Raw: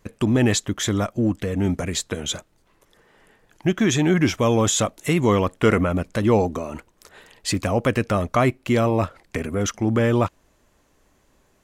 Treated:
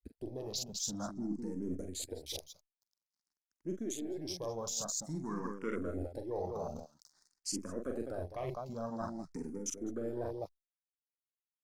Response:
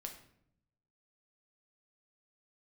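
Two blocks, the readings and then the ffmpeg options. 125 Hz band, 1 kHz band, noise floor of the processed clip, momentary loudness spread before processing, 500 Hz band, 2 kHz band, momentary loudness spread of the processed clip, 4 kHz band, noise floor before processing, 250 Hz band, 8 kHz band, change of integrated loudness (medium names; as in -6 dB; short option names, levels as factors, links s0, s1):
-23.5 dB, -19.5 dB, under -85 dBFS, 9 LU, -17.5 dB, -26.0 dB, 7 LU, -15.0 dB, -62 dBFS, -19.0 dB, -12.0 dB, -18.0 dB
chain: -filter_complex "[0:a]aeval=exprs='if(lt(val(0),0),0.708*val(0),val(0))':c=same,equalizer=f=110:t=o:w=0.41:g=-12.5,asplit=2[s0][s1];[s1]aecho=0:1:43.73|204.1:0.447|0.398[s2];[s0][s2]amix=inputs=2:normalize=0,aeval=exprs='sgn(val(0))*max(abs(val(0))-0.00355,0)':c=same,highshelf=f=3800:t=q:w=3:g=9,alimiter=limit=0.501:level=0:latency=1:release=272,bandreject=f=7700:w=17,afwtdn=0.0447,areverse,acompressor=threshold=0.0316:ratio=6,areverse,asplit=2[s3][s4];[s4]afreqshift=0.5[s5];[s3][s5]amix=inputs=2:normalize=1,volume=0.668"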